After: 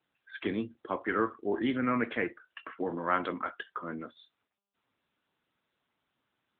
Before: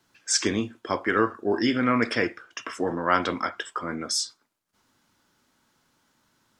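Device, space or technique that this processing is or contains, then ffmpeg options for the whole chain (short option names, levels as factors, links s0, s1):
mobile call with aggressive noise cancelling: -af "highpass=110,afftdn=nr=17:nf=-38,volume=0.501" -ar 8000 -c:a libopencore_amrnb -b:a 10200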